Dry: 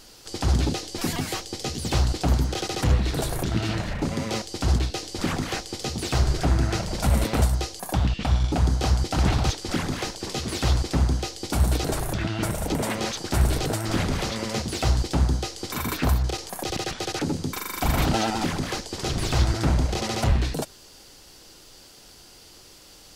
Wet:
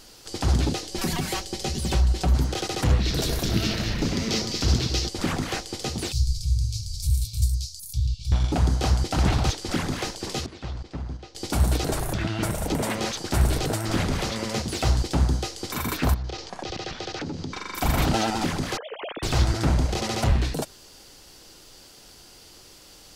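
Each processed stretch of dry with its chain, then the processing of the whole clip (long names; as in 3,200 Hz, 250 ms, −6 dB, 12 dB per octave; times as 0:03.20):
0:00.91–0:02.35: parametric band 64 Hz +12 dB 0.88 octaves + comb filter 5.3 ms, depth 58% + downward compressor 2 to 1, threshold −22 dBFS
0:03.00–0:05.09: drawn EQ curve 440 Hz 0 dB, 800 Hz −6 dB, 5,500 Hz +8 dB, 9,200 Hz −4 dB, 13,000 Hz +2 dB + delay that swaps between a low-pass and a high-pass 104 ms, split 1,300 Hz, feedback 68%, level −4.5 dB + one half of a high-frequency compander encoder only
0:06.12–0:08.32: elliptic band-stop filter 110–4,400 Hz + hollow resonant body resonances 690/2,300 Hz, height 16 dB, ringing for 35 ms
0:10.46–0:11.35: noise gate −23 dBFS, range −12 dB + downward compressor 10 to 1, threshold −28 dBFS + high-frequency loss of the air 130 metres
0:16.14–0:17.75: low-pass filter 5,800 Hz 24 dB per octave + downward compressor 4 to 1, threshold −28 dBFS
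0:18.77–0:19.23: three sine waves on the formant tracks + downward compressor 3 to 1, threshold −33 dBFS
whole clip: no processing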